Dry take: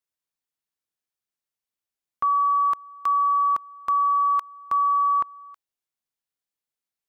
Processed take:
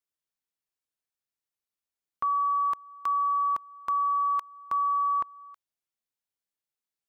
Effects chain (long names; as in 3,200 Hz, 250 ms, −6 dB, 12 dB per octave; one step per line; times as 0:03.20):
dynamic equaliser 1,300 Hz, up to −5 dB, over −38 dBFS, Q 5.3
level −3.5 dB